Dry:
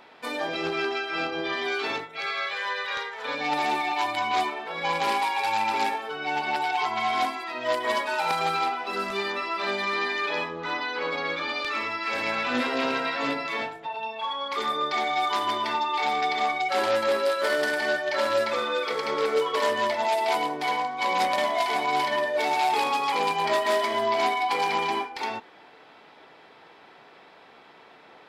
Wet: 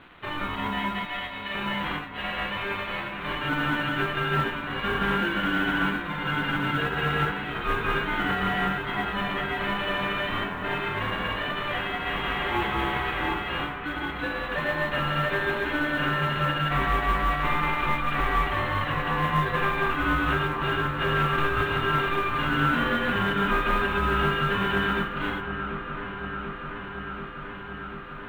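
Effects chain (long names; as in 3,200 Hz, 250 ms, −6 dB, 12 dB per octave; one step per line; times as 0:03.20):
variable-slope delta modulation 16 kbit/s
0:01.05–0:01.55: high-pass filter 1,200 Hz 24 dB per octave
ring modulation 600 Hz
noise that follows the level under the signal 31 dB
delay with a low-pass on its return 738 ms, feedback 80%, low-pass 2,300 Hz, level −10.5 dB
level +3.5 dB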